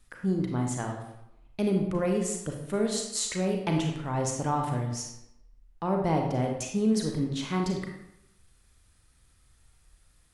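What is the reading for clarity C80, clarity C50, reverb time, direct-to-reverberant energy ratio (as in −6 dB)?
7.0 dB, 4.0 dB, 0.85 s, 1.5 dB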